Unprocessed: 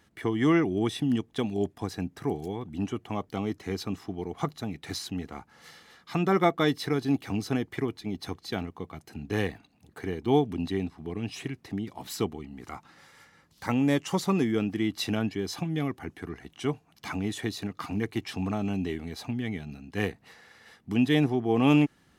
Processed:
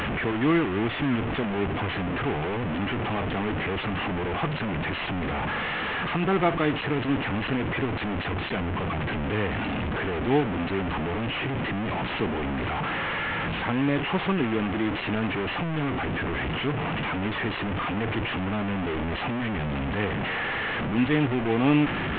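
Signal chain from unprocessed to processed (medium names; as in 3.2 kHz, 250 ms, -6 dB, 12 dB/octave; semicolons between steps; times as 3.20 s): one-bit delta coder 16 kbps, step -22 dBFS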